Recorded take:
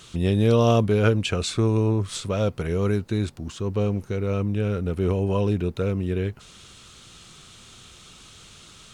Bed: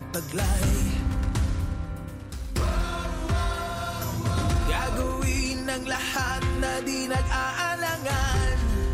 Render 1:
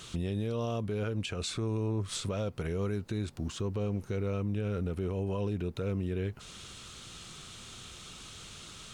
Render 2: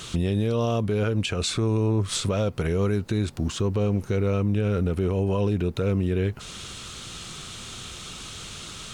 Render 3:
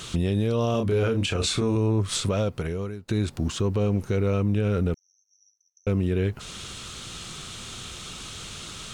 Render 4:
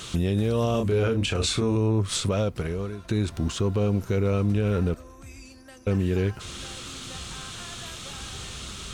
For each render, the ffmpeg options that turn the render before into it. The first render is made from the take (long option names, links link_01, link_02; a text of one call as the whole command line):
ffmpeg -i in.wav -af "acompressor=threshold=-27dB:ratio=2,alimiter=level_in=1.5dB:limit=-24dB:level=0:latency=1:release=225,volume=-1.5dB" out.wav
ffmpeg -i in.wav -af "volume=9dB" out.wav
ffmpeg -i in.wav -filter_complex "[0:a]asettb=1/sr,asplit=3[link_01][link_02][link_03];[link_01]atrim=end=0.714[link_04];[link_02]atrim=start=0.71:end=1.76,asetpts=PTS-STARTPTS,afade=type=in:duration=0.004:curve=qsin,afade=type=out:start_time=1.046:duration=0.004:curve=qsin,asplit=2[link_05][link_06];[link_06]adelay=31,volume=-5dB[link_07];[link_05][link_07]amix=inputs=2:normalize=0,atrim=end_sample=46305[link_08];[link_03]atrim=start=1.756[link_09];[link_04][link_08]acrossfade=duration=0.004:curve1=hsin:curve2=qsin[link_10];[link_10][link_09]acrossfade=duration=0.004:curve1=qsin:curve2=hsin,asettb=1/sr,asplit=3[link_11][link_12][link_13];[link_11]atrim=end=4.944[link_14];[link_12]atrim=start=4.94:end=5.87,asetpts=PTS-STARTPTS,afade=type=in:duration=0.004:curve=qsin,afade=type=out:start_time=0.926:duration=0.004:curve=qsin,asuperpass=centerf=5900:order=20:qfactor=7.4[link_15];[link_13]atrim=start=5.866[link_16];[link_14][link_15]acrossfade=duration=0.004:curve1=hsin:curve2=qsin[link_17];[link_17][link_16]acrossfade=duration=0.004:curve1=qsin:curve2=hsin,asplit=2[link_18][link_19];[link_18]atrim=end=3.08,asetpts=PTS-STARTPTS,afade=type=out:start_time=2.39:duration=0.69:silence=0.0841395[link_20];[link_19]atrim=start=3.08,asetpts=PTS-STARTPTS,afade=type=in:duration=0.004:curve=hsin:silence=0.0841395[link_21];[link_20][link_21]concat=n=2:v=0:a=1" out.wav
ffmpeg -i in.wav -i bed.wav -filter_complex "[1:a]volume=-19dB[link_01];[0:a][link_01]amix=inputs=2:normalize=0" out.wav